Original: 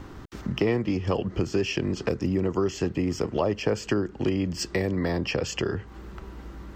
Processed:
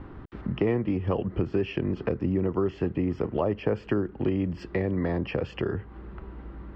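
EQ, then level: distance through air 470 m; 0.0 dB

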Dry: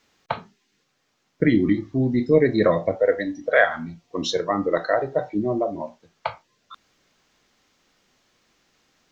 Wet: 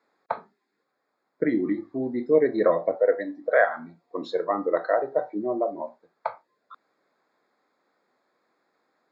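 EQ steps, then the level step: boxcar filter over 15 samples; high-pass 370 Hz 12 dB/octave; 0.0 dB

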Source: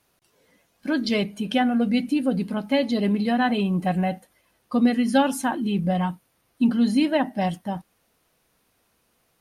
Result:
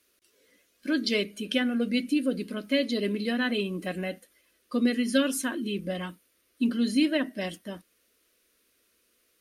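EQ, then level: bass shelf 75 Hz -11.5 dB; peaking EQ 220 Hz -3.5 dB 1.4 oct; static phaser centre 340 Hz, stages 4; +1.0 dB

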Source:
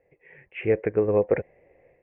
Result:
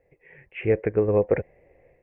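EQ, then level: bass shelf 98 Hz +9 dB; 0.0 dB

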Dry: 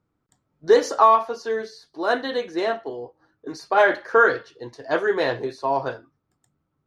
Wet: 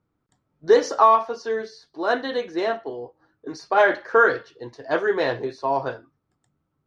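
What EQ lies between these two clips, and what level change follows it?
dynamic bell 5.6 kHz, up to +5 dB, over -53 dBFS, Q 4.5; distance through air 67 m; 0.0 dB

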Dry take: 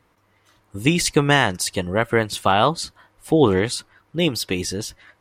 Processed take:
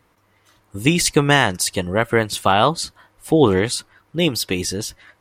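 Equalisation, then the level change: treble shelf 7.5 kHz +4 dB; +1.5 dB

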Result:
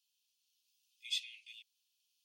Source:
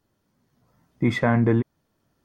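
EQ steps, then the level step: steep high-pass 2.6 kHz 96 dB/octave; tilt EQ -2 dB/octave; +6.0 dB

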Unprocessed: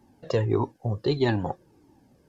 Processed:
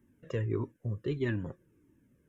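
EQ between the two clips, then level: static phaser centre 1.9 kHz, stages 4; -6.0 dB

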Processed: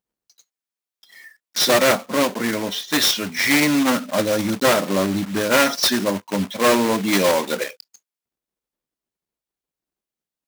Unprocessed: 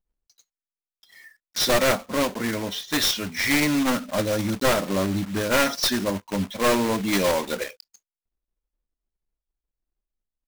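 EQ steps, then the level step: high-pass 150 Hz 12 dB/octave; +4.5 dB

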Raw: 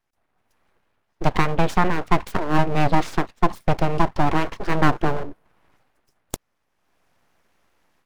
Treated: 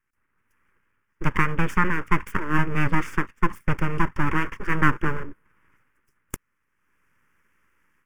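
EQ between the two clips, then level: peaking EQ 1.7 kHz +5 dB 2.1 oct; static phaser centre 1.7 kHz, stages 4; -1.5 dB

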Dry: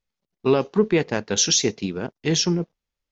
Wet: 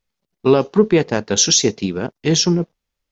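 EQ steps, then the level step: dynamic bell 2.2 kHz, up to -4 dB, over -38 dBFS, Q 1.4; +5.5 dB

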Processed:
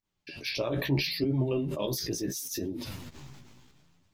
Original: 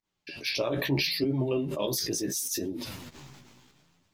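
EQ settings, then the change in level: dynamic bell 8.5 kHz, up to -6 dB, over -47 dBFS, Q 1.6; bass shelf 130 Hz +9.5 dB; -2.5 dB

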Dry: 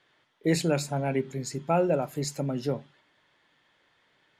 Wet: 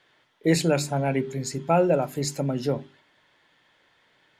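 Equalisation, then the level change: hum notches 50/100/150/200/250/300/350/400 Hz; band-stop 1.2 kHz, Q 21; +4.0 dB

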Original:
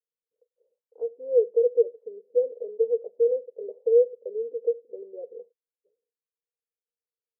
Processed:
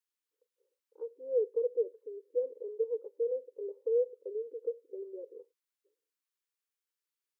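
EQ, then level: brick-wall FIR high-pass 270 Hz; Butterworth band-stop 680 Hz, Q 1.8; peaking EQ 470 Hz -14 dB 0.33 oct; +4.0 dB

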